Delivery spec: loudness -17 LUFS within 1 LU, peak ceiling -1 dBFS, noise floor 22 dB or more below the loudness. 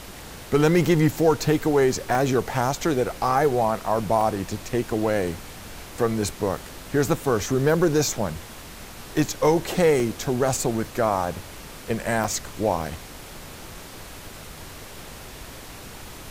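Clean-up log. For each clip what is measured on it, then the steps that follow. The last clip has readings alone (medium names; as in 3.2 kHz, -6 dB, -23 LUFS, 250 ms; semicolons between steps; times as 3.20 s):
dropouts 7; longest dropout 1.2 ms; noise floor -41 dBFS; noise floor target -45 dBFS; loudness -23.0 LUFS; peak level -8.0 dBFS; loudness target -17.0 LUFS
-> interpolate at 2.15/4.21/5.34/7.29/10.00/12.24/12.82 s, 1.2 ms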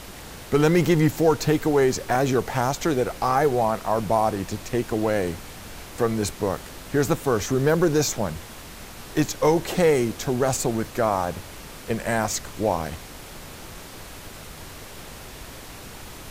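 dropouts 0; noise floor -41 dBFS; noise floor target -45 dBFS
-> noise print and reduce 6 dB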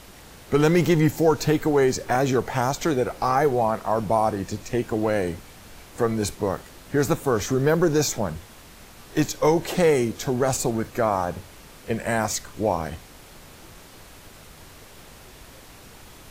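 noise floor -47 dBFS; loudness -23.0 LUFS; peak level -8.0 dBFS; loudness target -17.0 LUFS
-> trim +6 dB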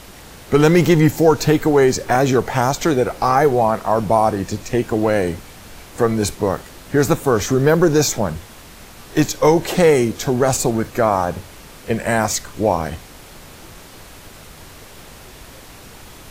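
loudness -17.0 LUFS; peak level -2.0 dBFS; noise floor -41 dBFS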